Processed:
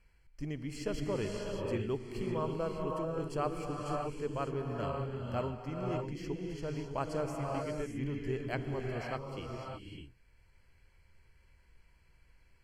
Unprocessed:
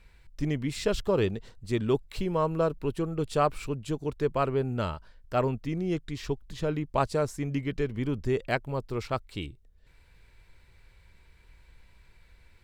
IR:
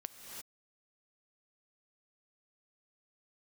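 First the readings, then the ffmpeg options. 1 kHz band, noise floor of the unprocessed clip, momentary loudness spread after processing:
-7.0 dB, -59 dBFS, 7 LU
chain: -filter_complex "[0:a]asuperstop=centerf=3700:order=12:qfactor=5.2[s0];[1:a]atrim=start_sample=2205,asetrate=25578,aresample=44100[s1];[s0][s1]afir=irnorm=-1:irlink=0,volume=0.398"

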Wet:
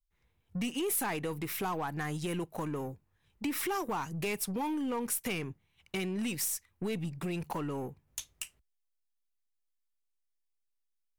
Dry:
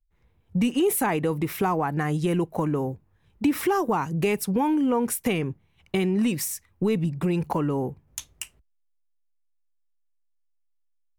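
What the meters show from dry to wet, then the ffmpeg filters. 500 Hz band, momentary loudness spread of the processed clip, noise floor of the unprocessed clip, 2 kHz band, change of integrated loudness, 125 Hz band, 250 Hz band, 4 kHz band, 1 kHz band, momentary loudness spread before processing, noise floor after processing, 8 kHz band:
-11.5 dB, 11 LU, -69 dBFS, -6.0 dB, -10.0 dB, -11.0 dB, -11.5 dB, -4.0 dB, -9.5 dB, 11 LU, -80 dBFS, -3.5 dB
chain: -af "tiltshelf=f=1400:g=-5,asoftclip=type=tanh:threshold=0.0891,aeval=exprs='0.0891*(cos(1*acos(clip(val(0)/0.0891,-1,1)))-cos(1*PI/2))+0.00316*(cos(8*acos(clip(val(0)/0.0891,-1,1)))-cos(8*PI/2))':c=same,volume=0.531"

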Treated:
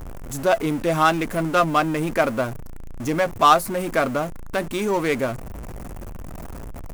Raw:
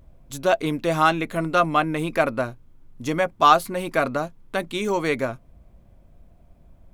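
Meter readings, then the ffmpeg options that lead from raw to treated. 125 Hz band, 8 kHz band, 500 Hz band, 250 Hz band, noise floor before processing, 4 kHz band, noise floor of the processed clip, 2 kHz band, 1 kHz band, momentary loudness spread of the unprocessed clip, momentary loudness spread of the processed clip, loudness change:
+2.5 dB, +4.5 dB, +1.5 dB, +2.0 dB, -53 dBFS, +0.5 dB, -34 dBFS, +0.5 dB, +0.5 dB, 12 LU, 20 LU, +1.0 dB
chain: -filter_complex "[0:a]aeval=exprs='val(0)+0.5*0.0376*sgn(val(0))':c=same,acrossover=split=4500[s0][s1];[s0]adynamicsmooth=sensitivity=2.5:basefreq=1400[s2];[s2][s1]amix=inputs=2:normalize=0"

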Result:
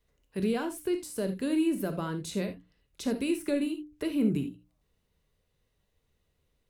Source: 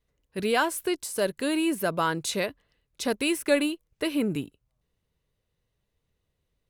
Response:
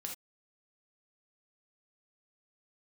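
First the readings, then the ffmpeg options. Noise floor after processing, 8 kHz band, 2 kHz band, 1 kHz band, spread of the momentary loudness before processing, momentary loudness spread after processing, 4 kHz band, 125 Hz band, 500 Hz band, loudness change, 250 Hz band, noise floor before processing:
-76 dBFS, -9.0 dB, -12.0 dB, -12.0 dB, 8 LU, 8 LU, -10.5 dB, +1.5 dB, -5.5 dB, -4.0 dB, 0.0 dB, -79 dBFS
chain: -filter_complex "[0:a]acrossover=split=340[s0][s1];[s1]acompressor=threshold=0.00251:ratio=2[s2];[s0][s2]amix=inputs=2:normalize=0,bandreject=f=60:t=h:w=6,bandreject=f=120:t=h:w=6,bandreject=f=180:t=h:w=6,bandreject=f=240:t=h:w=6,bandreject=f=300:t=h:w=6,asplit=2[s3][s4];[1:a]atrim=start_sample=2205[s5];[s4][s5]afir=irnorm=-1:irlink=0,volume=1.58[s6];[s3][s6]amix=inputs=2:normalize=0,volume=0.668"

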